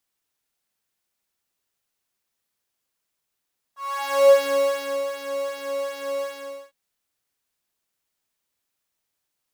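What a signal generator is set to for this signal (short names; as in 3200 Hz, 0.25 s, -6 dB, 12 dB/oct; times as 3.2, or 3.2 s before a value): synth patch with pulse-width modulation C#5, oscillator 2 square, interval -12 st, oscillator 2 level -12 dB, noise -16 dB, filter highpass, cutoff 430 Hz, Q 6.8, filter envelope 1.5 oct, filter decay 0.69 s, filter sustain 5%, attack 0.463 s, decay 0.82 s, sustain -10 dB, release 0.50 s, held 2.46 s, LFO 2.6 Hz, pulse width 21%, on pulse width 15%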